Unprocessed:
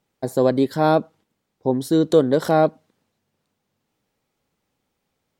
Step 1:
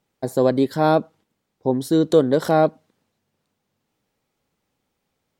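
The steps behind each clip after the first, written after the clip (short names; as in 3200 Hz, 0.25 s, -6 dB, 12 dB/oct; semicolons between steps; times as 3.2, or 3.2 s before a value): nothing audible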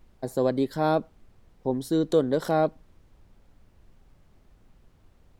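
added noise brown -48 dBFS; gain -6.5 dB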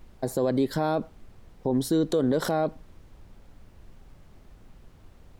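limiter -21.5 dBFS, peak gain reduction 11.5 dB; gain +6.5 dB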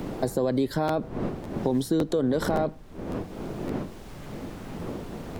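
wind noise 330 Hz -40 dBFS; crackling interface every 0.56 s, samples 512, repeat, from 0.87; three-band squash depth 70%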